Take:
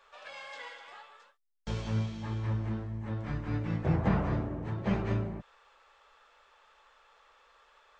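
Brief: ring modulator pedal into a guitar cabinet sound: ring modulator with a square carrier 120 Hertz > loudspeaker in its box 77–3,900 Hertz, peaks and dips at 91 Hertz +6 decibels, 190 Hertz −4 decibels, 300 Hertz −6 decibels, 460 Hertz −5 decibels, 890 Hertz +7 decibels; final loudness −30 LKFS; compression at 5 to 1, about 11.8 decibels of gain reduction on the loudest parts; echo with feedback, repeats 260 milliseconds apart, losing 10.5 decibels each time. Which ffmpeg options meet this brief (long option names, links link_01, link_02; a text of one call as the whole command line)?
ffmpeg -i in.wav -af "acompressor=threshold=-36dB:ratio=5,aecho=1:1:260|520|780:0.299|0.0896|0.0269,aeval=exprs='val(0)*sgn(sin(2*PI*120*n/s))':channel_layout=same,highpass=77,equalizer=frequency=91:width_type=q:width=4:gain=6,equalizer=frequency=190:width_type=q:width=4:gain=-4,equalizer=frequency=300:width_type=q:width=4:gain=-6,equalizer=frequency=460:width_type=q:width=4:gain=-5,equalizer=frequency=890:width_type=q:width=4:gain=7,lowpass=frequency=3900:width=0.5412,lowpass=frequency=3900:width=1.3066,volume=12.5dB" out.wav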